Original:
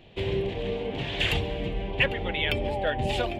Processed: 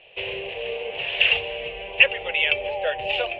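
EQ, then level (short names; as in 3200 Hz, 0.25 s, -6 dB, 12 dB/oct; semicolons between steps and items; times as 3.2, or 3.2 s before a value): synth low-pass 2700 Hz, resonance Q 6.1; resonant low shelf 370 Hz -11.5 dB, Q 3; -3.5 dB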